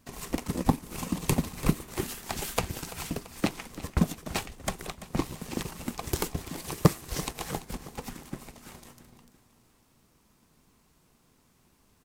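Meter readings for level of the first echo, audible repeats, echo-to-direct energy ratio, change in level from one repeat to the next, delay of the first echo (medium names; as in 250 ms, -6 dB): -16.0 dB, 3, -14.5 dB, -5.0 dB, 337 ms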